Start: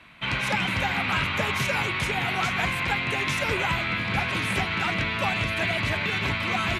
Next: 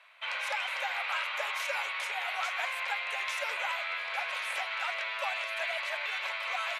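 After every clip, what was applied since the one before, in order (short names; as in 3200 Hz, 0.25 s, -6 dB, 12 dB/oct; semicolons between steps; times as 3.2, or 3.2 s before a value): elliptic high-pass 550 Hz, stop band 50 dB; gain -6.5 dB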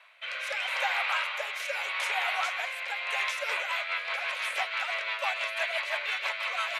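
rotary speaker horn 0.8 Hz, later 6 Hz, at 2.95; gain +5.5 dB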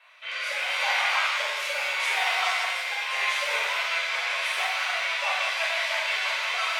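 shimmer reverb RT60 1.1 s, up +7 st, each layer -8 dB, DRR -6.5 dB; gain -3.5 dB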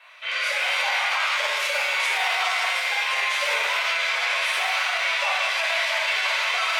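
limiter -20.5 dBFS, peak gain reduction 8 dB; gain +6 dB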